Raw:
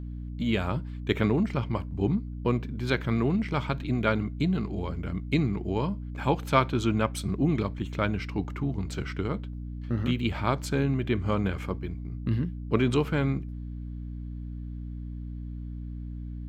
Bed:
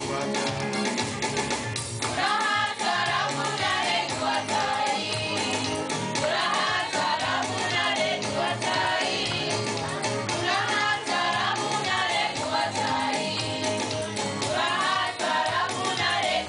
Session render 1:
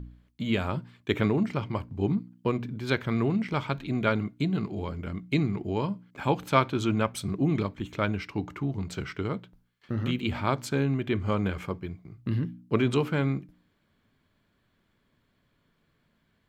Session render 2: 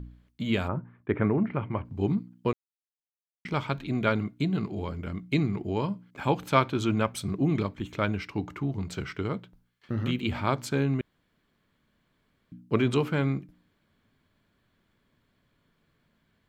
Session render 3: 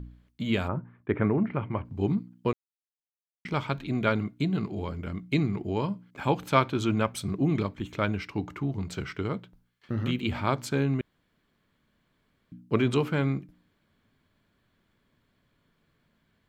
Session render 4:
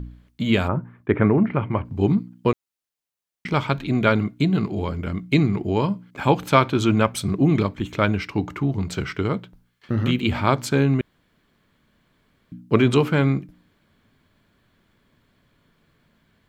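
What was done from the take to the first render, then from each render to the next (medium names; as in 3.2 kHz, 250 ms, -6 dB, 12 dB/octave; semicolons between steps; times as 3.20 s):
de-hum 60 Hz, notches 5
0.67–1.84 s: low-pass 1.5 kHz -> 2.7 kHz 24 dB/octave; 2.53–3.45 s: mute; 11.01–12.52 s: room tone
no audible change
trim +7.5 dB; peak limiter -2 dBFS, peak gain reduction 2.5 dB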